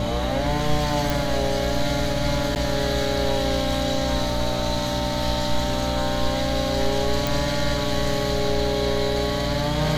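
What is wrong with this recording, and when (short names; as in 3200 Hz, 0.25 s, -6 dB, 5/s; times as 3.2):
hum 60 Hz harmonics 5 -28 dBFS
tone 590 Hz -28 dBFS
1.1 pop
2.55–2.56 gap 9.2 ms
7.27 pop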